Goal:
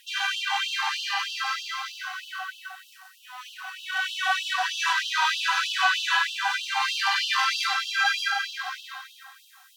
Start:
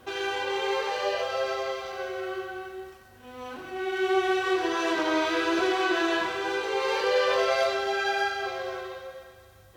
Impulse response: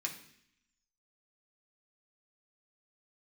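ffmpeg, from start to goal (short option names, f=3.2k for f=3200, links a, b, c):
-af "bandreject=f=2.2k:w=12,afftfilt=real='re*gte(b*sr/1024,700*pow(2700/700,0.5+0.5*sin(2*PI*3.2*pts/sr)))':imag='im*gte(b*sr/1024,700*pow(2700/700,0.5+0.5*sin(2*PI*3.2*pts/sr)))':win_size=1024:overlap=0.75,volume=7.5dB"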